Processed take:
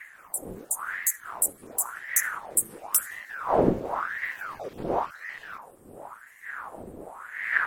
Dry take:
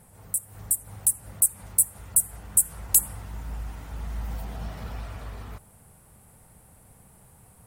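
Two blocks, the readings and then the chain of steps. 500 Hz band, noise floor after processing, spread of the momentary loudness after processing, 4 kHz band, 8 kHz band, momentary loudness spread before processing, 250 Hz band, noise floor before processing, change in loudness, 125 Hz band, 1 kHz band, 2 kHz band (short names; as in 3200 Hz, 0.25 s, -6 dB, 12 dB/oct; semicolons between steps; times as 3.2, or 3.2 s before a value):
+18.5 dB, -53 dBFS, 17 LU, -0.5 dB, -4.5 dB, 17 LU, +12.0 dB, -55 dBFS, -4.0 dB, -4.0 dB, +15.0 dB, +20.5 dB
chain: random spectral dropouts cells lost 34%; wind noise 200 Hz -30 dBFS; ring modulator with a swept carrier 1100 Hz, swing 75%, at 0.94 Hz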